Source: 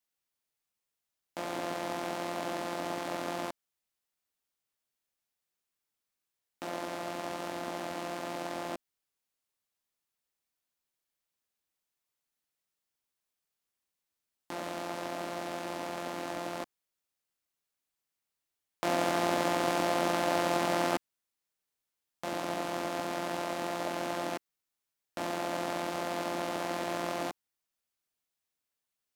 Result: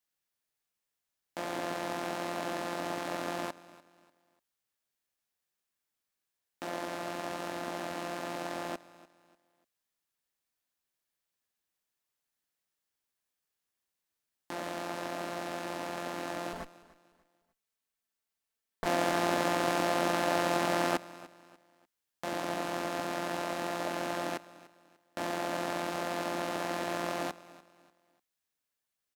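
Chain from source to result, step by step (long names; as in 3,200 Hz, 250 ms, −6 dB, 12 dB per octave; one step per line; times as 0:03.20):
0:16.53–0:18.86: lower of the sound and its delayed copy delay 4.5 ms
parametric band 1,700 Hz +3.5 dB 0.22 octaves
repeating echo 295 ms, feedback 33%, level −19 dB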